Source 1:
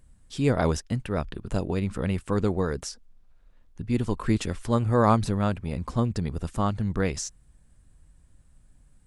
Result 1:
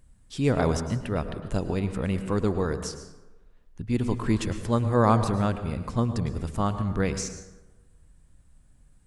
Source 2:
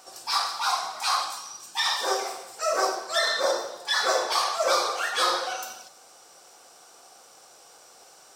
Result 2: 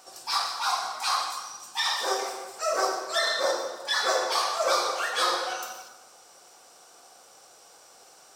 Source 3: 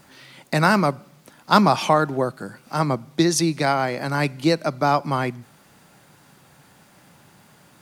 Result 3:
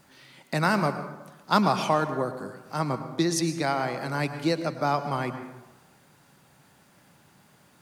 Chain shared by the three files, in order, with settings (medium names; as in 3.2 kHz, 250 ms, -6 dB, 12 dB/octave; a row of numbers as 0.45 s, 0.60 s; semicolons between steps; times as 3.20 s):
plate-style reverb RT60 1.1 s, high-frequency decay 0.5×, pre-delay 95 ms, DRR 9.5 dB; normalise loudness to -27 LUFS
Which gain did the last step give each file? -0.5 dB, -1.5 dB, -6.5 dB